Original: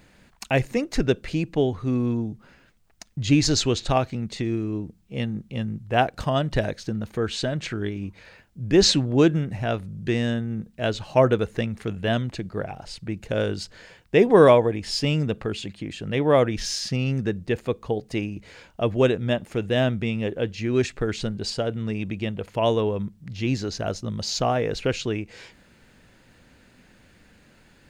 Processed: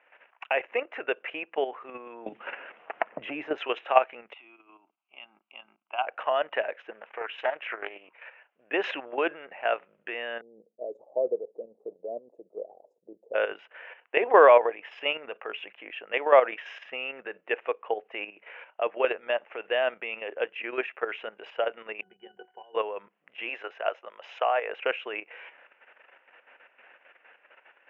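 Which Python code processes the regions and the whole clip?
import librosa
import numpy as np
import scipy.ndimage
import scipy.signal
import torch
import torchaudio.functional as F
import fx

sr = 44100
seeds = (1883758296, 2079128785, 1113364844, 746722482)

y = fx.chain(x, sr, fx.tilt_eq(slope=-4.0),
    fx.band_squash(depth_pct=100), at=(2.26, 3.58))
y = fx.chain(y, sr, fx.highpass(hz=260.0, slope=12),
    fx.level_steps(step_db=13),
    fx.fixed_phaser(hz=1800.0, stages=6), at=(4.33, 6.07))
y = fx.chain(y, sr, fx.low_shelf(hz=310.0, db=-6.0),
    fx.doppler_dist(depth_ms=0.34), at=(6.91, 8.7))
y = fx.chain(y, sr, fx.ellip_bandstop(low_hz=500.0, high_hz=8100.0, order=3, stop_db=60),
    fx.dynamic_eq(hz=1100.0, q=2.4, threshold_db=-44.0, ratio=4.0, max_db=-3), at=(10.41, 13.34))
y = fx.chain(y, sr, fx.over_compress(threshold_db=-24.0, ratio=-0.5),
    fx.octave_resonator(note='F#', decay_s=0.14), at=(22.01, 22.75))
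y = fx.chain(y, sr, fx.highpass(hz=440.0, slope=12),
    fx.high_shelf(hz=4600.0, db=3.0), at=(23.49, 24.7))
y = scipy.signal.sosfilt(scipy.signal.butter(4, 550.0, 'highpass', fs=sr, output='sos'), y)
y = fx.level_steps(y, sr, step_db=10)
y = scipy.signal.sosfilt(scipy.signal.ellip(4, 1.0, 40, 2800.0, 'lowpass', fs=sr, output='sos'), y)
y = F.gain(torch.from_numpy(y), 6.5).numpy()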